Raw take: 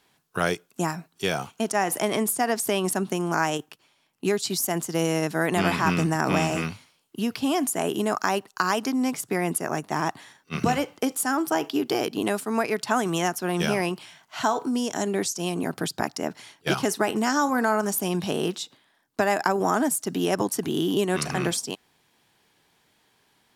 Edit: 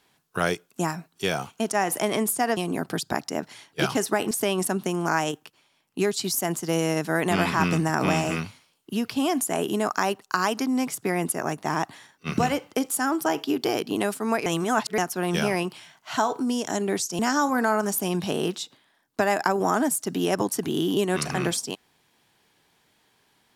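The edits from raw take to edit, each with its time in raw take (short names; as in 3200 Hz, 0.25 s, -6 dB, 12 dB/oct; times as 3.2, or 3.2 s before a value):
12.72–13.24 reverse
15.45–17.19 move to 2.57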